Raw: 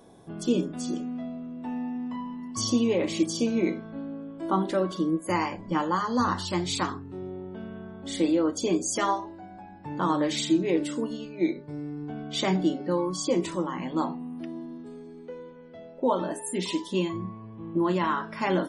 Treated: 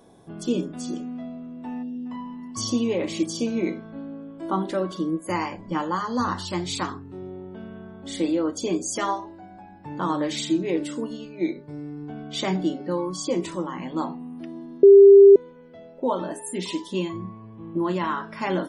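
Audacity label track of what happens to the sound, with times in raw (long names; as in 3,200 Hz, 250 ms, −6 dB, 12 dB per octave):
1.830000	2.060000	gain on a spectral selection 680–2,700 Hz −20 dB
14.830000	15.360000	beep over 397 Hz −6 dBFS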